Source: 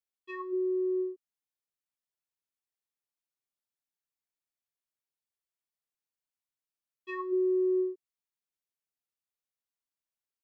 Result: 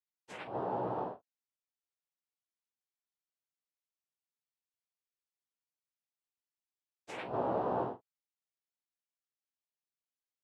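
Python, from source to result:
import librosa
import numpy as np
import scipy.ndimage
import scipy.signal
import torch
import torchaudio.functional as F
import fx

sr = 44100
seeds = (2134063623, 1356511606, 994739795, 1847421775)

y = fx.noise_vocoder(x, sr, seeds[0], bands=4)
y = fx.room_early_taps(y, sr, ms=(16, 48), db=(-3.5, -12.5))
y = F.gain(torch.from_numpy(y), -8.0).numpy()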